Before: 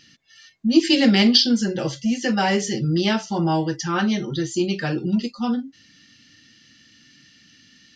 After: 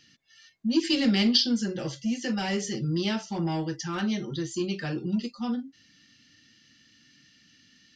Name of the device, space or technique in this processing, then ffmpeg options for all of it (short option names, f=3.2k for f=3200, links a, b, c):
one-band saturation: -filter_complex "[0:a]acrossover=split=370|2100[a][b][c];[b]asoftclip=type=tanh:threshold=-26dB[d];[a][d][c]amix=inputs=3:normalize=0,volume=-6.5dB"